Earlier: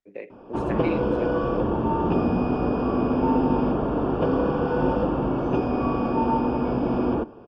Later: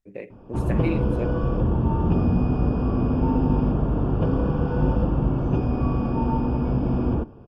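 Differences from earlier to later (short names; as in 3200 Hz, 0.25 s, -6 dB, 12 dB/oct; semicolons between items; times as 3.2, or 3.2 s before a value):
background -5.5 dB; master: remove three-band isolator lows -16 dB, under 250 Hz, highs -22 dB, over 7300 Hz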